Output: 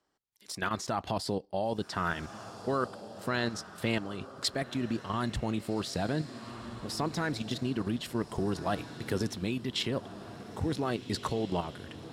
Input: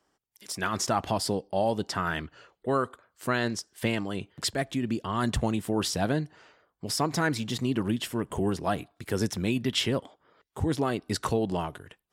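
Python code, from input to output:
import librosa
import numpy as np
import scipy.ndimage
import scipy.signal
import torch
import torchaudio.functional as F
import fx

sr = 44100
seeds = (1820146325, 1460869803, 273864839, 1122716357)

y = fx.high_shelf(x, sr, hz=7000.0, db=-4.5)
y = fx.level_steps(y, sr, step_db=10)
y = fx.peak_eq(y, sr, hz=4100.0, db=6.0, octaves=0.3)
y = fx.echo_diffused(y, sr, ms=1556, feedback_pct=45, wet_db=-14)
y = fx.rider(y, sr, range_db=3, speed_s=0.5)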